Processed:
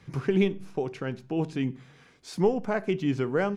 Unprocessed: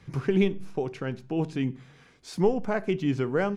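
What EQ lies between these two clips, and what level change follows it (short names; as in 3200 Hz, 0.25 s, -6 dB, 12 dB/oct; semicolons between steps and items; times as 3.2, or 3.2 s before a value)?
low shelf 62 Hz -7 dB; 0.0 dB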